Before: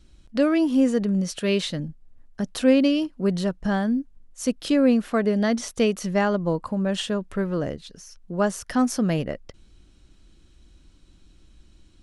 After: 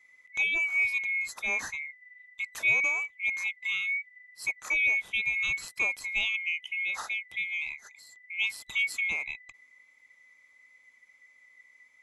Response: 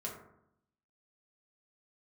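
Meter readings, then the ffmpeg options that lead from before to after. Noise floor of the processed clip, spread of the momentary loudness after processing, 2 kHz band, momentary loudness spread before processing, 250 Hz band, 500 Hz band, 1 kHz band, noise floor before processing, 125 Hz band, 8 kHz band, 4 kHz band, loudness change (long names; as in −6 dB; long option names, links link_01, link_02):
−62 dBFS, 12 LU, +9.0 dB, 13 LU, below −35 dB, −27.0 dB, −14.0 dB, −55 dBFS, below −25 dB, −7.0 dB, −4.0 dB, −4.5 dB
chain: -af "afftfilt=real='real(if(lt(b,920),b+92*(1-2*mod(floor(b/92),2)),b),0)':imag='imag(if(lt(b,920),b+92*(1-2*mod(floor(b/92),2)),b),0)':win_size=2048:overlap=0.75,volume=-8dB"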